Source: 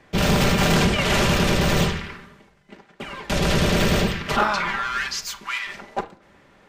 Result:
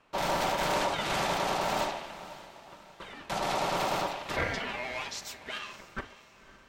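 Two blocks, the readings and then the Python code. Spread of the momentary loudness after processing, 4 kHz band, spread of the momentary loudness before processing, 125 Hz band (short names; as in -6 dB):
18 LU, -10.5 dB, 14 LU, -19.5 dB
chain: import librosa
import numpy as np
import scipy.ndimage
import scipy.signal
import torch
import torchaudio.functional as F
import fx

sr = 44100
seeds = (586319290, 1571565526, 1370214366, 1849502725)

y = fx.echo_diffused(x, sr, ms=534, feedback_pct=44, wet_db=-16.0)
y = y * np.sin(2.0 * np.pi * 760.0 * np.arange(len(y)) / sr)
y = F.gain(torch.from_numpy(y), -8.0).numpy()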